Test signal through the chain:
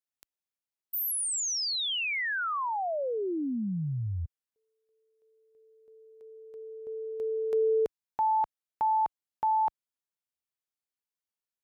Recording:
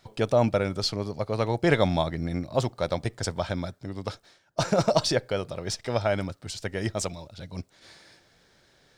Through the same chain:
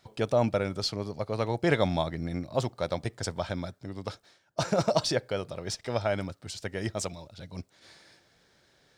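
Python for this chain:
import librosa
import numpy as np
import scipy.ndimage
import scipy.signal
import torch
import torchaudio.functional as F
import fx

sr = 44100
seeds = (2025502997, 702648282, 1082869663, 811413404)

y = fx.highpass(x, sr, hz=45.0, slope=6)
y = y * 10.0 ** (-3.0 / 20.0)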